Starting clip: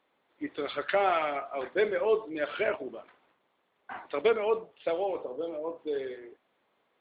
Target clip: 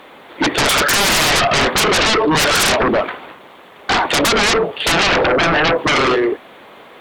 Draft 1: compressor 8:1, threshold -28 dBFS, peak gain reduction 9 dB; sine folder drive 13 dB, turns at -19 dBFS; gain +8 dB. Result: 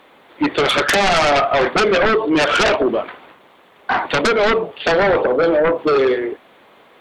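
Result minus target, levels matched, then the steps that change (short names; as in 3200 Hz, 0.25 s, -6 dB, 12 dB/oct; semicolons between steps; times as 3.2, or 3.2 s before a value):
sine folder: distortion -17 dB
change: sine folder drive 21 dB, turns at -19 dBFS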